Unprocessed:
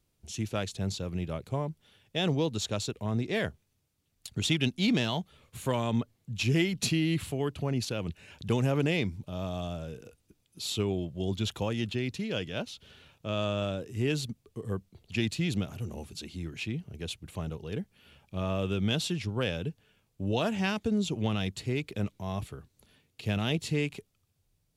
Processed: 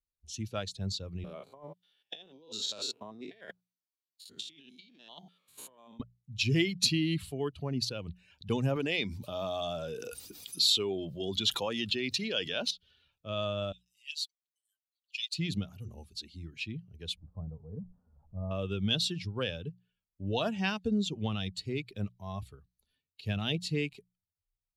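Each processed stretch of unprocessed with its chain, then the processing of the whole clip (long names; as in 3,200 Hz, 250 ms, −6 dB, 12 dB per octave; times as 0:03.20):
0:01.24–0:06.00: spectrum averaged block by block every 100 ms + high-pass filter 270 Hz + compressor whose output falls as the input rises −39 dBFS, ratio −0.5
0:08.76–0:12.71: high-pass filter 340 Hz 6 dB per octave + envelope flattener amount 70%
0:13.72–0:15.34: inverse Chebyshev high-pass filter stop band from 760 Hz, stop band 60 dB + comb filter 6.4 ms, depth 68% + expander for the loud parts, over −46 dBFS
0:17.17–0:18.51: converter with a step at zero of −44 dBFS + Gaussian smoothing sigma 9.3 samples + parametric band 360 Hz −12 dB 0.3 octaves
whole clip: spectral dynamics exaggerated over time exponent 1.5; parametric band 4,200 Hz +9.5 dB 0.73 octaves; mains-hum notches 60/120/180 Hz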